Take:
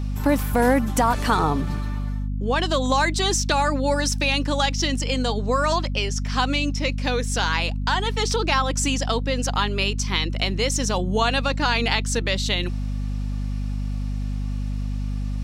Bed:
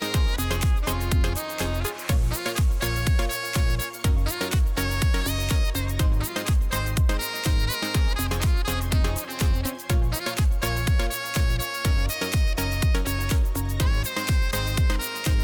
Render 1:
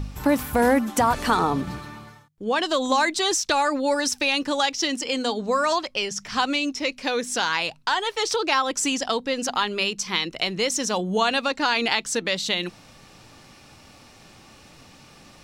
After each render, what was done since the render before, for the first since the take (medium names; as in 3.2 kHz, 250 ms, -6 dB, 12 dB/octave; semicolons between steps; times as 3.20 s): de-hum 50 Hz, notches 5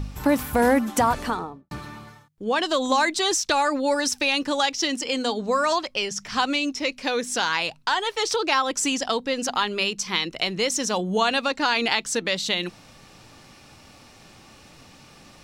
1.01–1.71 s: studio fade out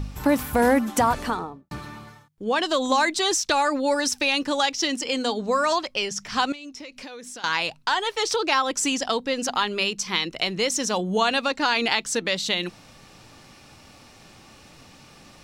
6.52–7.44 s: compression 16:1, threshold -35 dBFS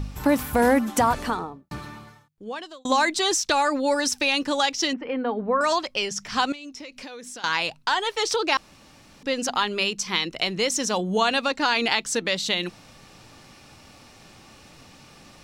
1.83–2.85 s: fade out linear; 4.93–5.61 s: low-pass 2 kHz 24 dB/octave; 8.57–9.23 s: room tone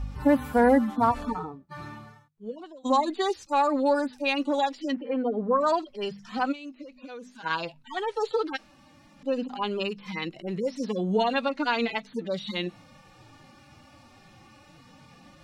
harmonic-percussive separation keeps harmonic; treble shelf 3.3 kHz -8 dB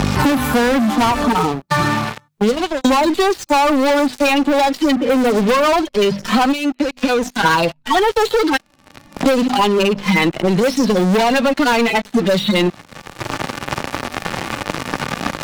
waveshaping leveller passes 5; three bands compressed up and down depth 100%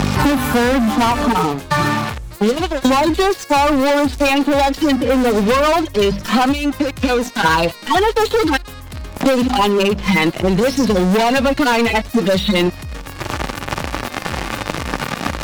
add bed -8 dB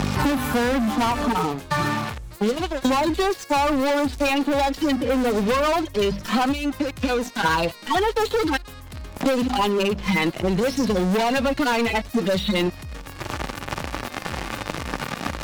trim -6.5 dB